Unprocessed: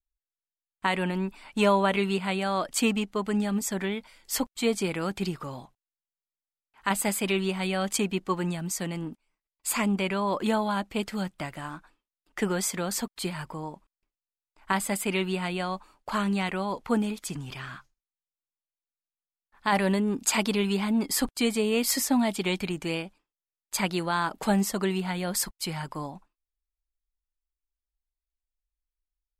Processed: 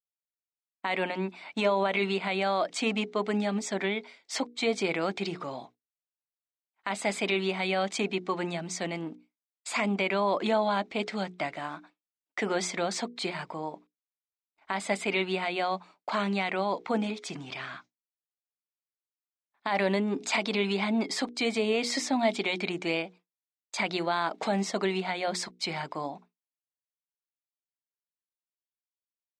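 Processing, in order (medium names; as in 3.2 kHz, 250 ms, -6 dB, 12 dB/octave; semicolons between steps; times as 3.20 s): peak limiter -19 dBFS, peak gain reduction 9 dB; tilt EQ -1.5 dB/octave; hum notches 60/120/180/240/300/360/420/480 Hz; expander -45 dBFS; cabinet simulation 280–7700 Hz, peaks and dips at 680 Hz +7 dB, 2.2 kHz +8 dB, 3.8 kHz +8 dB, 5.6 kHz +4 dB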